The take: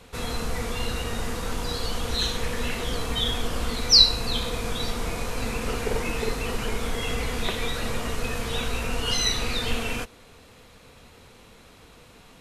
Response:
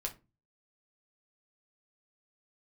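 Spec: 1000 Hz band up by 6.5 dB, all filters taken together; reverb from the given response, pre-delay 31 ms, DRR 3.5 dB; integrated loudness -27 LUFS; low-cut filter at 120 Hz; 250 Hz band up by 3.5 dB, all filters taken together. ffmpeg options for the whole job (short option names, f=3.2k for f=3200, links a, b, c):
-filter_complex "[0:a]highpass=120,equalizer=f=250:t=o:g=4,equalizer=f=1k:t=o:g=8,asplit=2[a][b];[1:a]atrim=start_sample=2205,adelay=31[c];[b][c]afir=irnorm=-1:irlink=0,volume=-3.5dB[d];[a][d]amix=inputs=2:normalize=0,volume=-4dB"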